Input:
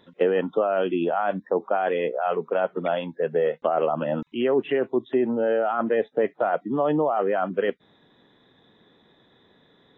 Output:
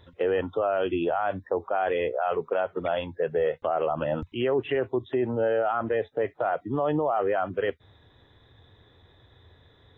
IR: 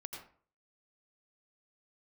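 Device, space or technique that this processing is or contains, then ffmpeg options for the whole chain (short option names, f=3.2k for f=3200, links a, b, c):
car stereo with a boomy subwoofer: -af "lowshelf=f=130:t=q:w=3:g=13.5,alimiter=limit=-16.5dB:level=0:latency=1:release=45"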